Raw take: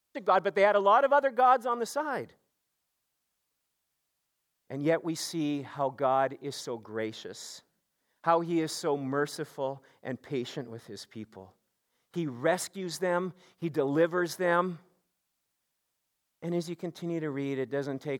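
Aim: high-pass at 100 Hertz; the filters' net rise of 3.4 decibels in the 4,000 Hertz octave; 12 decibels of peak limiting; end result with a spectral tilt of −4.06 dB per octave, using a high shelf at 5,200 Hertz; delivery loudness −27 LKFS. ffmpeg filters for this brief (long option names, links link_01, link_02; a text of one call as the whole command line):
ffmpeg -i in.wav -af "highpass=100,equalizer=frequency=4000:width_type=o:gain=7.5,highshelf=frequency=5200:gain=-7,volume=7dB,alimiter=limit=-15dB:level=0:latency=1" out.wav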